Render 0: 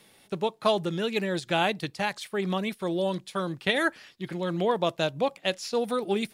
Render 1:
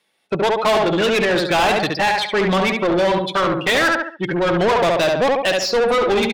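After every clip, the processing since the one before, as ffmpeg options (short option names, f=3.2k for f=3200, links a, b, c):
-filter_complex "[0:a]afftdn=nr=30:nf=-39,asplit=2[a][b];[b]adelay=70,lowpass=f=2.1k:p=1,volume=-5.5dB,asplit=2[c][d];[d]adelay=70,lowpass=f=2.1k:p=1,volume=0.35,asplit=2[e][f];[f]adelay=70,lowpass=f=2.1k:p=1,volume=0.35,asplit=2[g][h];[h]adelay=70,lowpass=f=2.1k:p=1,volume=0.35[i];[a][c][e][g][i]amix=inputs=5:normalize=0,asplit=2[j][k];[k]highpass=f=720:p=1,volume=30dB,asoftclip=type=tanh:threshold=-9dB[l];[j][l]amix=inputs=2:normalize=0,lowpass=f=4.2k:p=1,volume=-6dB"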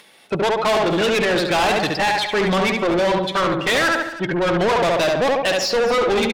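-af "acompressor=mode=upward:threshold=-37dB:ratio=2.5,asoftclip=type=tanh:threshold=-15dB,aecho=1:1:246:0.168,volume=1dB"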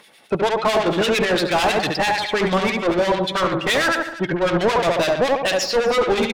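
-filter_complex "[0:a]acrossover=split=1600[a][b];[a]aeval=exprs='val(0)*(1-0.7/2+0.7/2*cos(2*PI*9*n/s))':c=same[c];[b]aeval=exprs='val(0)*(1-0.7/2-0.7/2*cos(2*PI*9*n/s))':c=same[d];[c][d]amix=inputs=2:normalize=0,volume=2.5dB"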